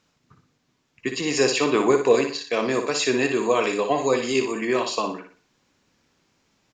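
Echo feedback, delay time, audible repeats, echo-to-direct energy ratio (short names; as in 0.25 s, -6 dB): 36%, 60 ms, 4, -6.5 dB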